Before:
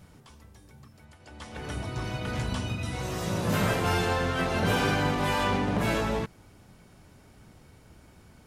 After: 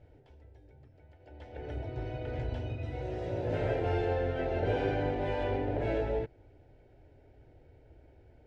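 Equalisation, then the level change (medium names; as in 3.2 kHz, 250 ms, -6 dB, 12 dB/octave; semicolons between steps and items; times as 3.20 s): low-pass 1.5 kHz 12 dB/octave; static phaser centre 470 Hz, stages 4; 0.0 dB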